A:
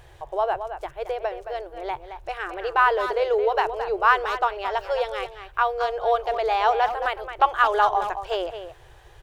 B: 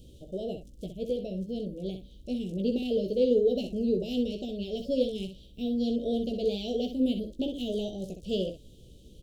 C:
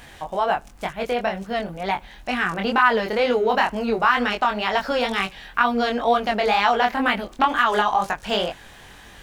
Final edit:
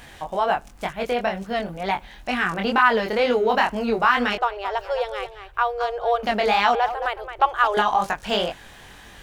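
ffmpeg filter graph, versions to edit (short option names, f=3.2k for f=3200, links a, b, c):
-filter_complex "[0:a]asplit=2[a][b];[2:a]asplit=3[c][d][e];[c]atrim=end=4.382[f];[a]atrim=start=4.378:end=6.232[g];[d]atrim=start=6.228:end=6.752[h];[b]atrim=start=6.748:end=7.772[i];[e]atrim=start=7.768[j];[f][g]acrossfade=d=0.004:c1=hsin:c2=hsin[k];[k][h]acrossfade=d=0.004:c1=hsin:c2=hsin[l];[l][i]acrossfade=d=0.004:c1=hsin:c2=hsin[m];[m][j]acrossfade=d=0.004:c1=hsin:c2=hsin"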